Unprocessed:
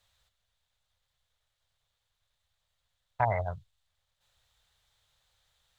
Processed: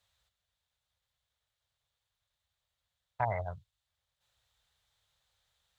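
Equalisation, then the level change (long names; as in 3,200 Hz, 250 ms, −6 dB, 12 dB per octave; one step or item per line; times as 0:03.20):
high-pass filter 40 Hz
−4.5 dB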